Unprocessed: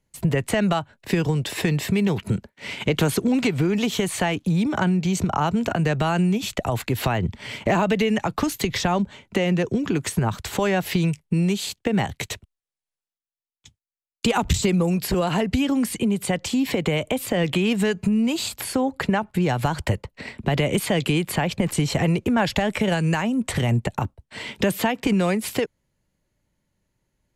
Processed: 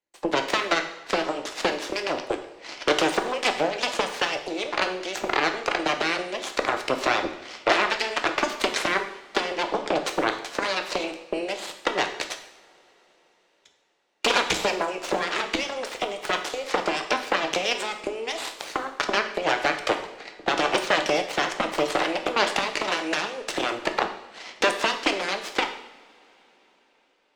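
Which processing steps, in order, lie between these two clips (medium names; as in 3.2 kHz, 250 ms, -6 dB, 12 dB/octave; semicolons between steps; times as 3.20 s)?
harmonic-percussive split percussive +8 dB; Chebyshev shaper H 6 -9 dB, 7 -14 dB, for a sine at -1.5 dBFS; three-band isolator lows -23 dB, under 320 Hz, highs -21 dB, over 7.2 kHz; in parallel at -11.5 dB: saturation -13 dBFS, distortion -9 dB; on the sum: reverberation, pre-delay 3 ms, DRR 5 dB; trim -8.5 dB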